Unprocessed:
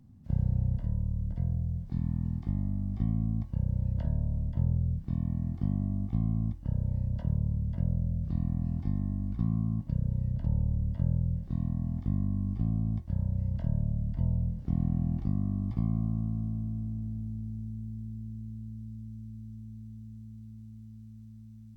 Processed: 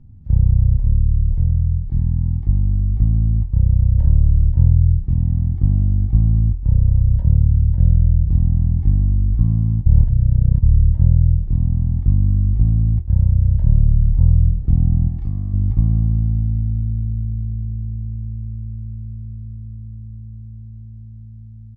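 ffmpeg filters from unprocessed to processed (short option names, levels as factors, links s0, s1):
-filter_complex "[0:a]asettb=1/sr,asplit=3[s0][s1][s2];[s0]atrim=end=15.084[s3];[s1]atrim=start=15.08:end=15.54,asetpts=PTS-STARTPTS,afade=t=in:d=0.004:c=qsin,afade=t=out:st=0.456:d=0.004:c=qsin,tiltshelf=f=970:g=-7[s4];[s2]atrim=start=15.536[s5];[s3][s4]acrossfade=d=0.004:c1=hsin:c2=qsin[s6];[s6][s5]acrossfade=d=0.004:c1=qsin:c2=hsin,asplit=3[s7][s8][s9];[s7]atrim=end=9.862[s10];[s8]atrim=start=9.858:end=10.622,asetpts=PTS-STARTPTS,areverse[s11];[s9]atrim=start=10.618[s12];[s10][s11]acrossfade=d=0.004:c1=hsin:c2=hsin[s13];[s13][s12]acrossfade=d=0.004:c1=hsin:c2=hsin,aemphasis=mode=reproduction:type=riaa,aecho=1:1:2.3:0.41,dynaudnorm=f=240:g=31:m=3.76,volume=0.891"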